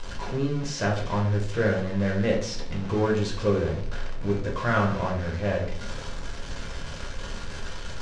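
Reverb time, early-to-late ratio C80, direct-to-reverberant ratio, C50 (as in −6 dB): 0.55 s, 10.5 dB, −2.0 dB, 6.5 dB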